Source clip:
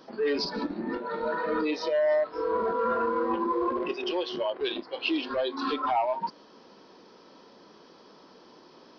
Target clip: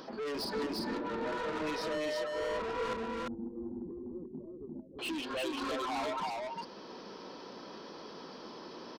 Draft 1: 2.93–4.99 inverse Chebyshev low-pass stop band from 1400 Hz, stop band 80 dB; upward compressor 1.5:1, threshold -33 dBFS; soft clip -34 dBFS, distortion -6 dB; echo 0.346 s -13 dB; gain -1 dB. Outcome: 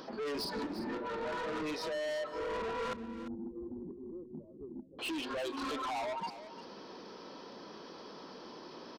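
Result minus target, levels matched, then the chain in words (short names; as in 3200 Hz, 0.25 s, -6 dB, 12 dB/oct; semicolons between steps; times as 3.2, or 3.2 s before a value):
echo-to-direct -11 dB
2.93–4.99 inverse Chebyshev low-pass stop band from 1400 Hz, stop band 80 dB; upward compressor 1.5:1, threshold -33 dBFS; soft clip -34 dBFS, distortion -6 dB; echo 0.346 s -2 dB; gain -1 dB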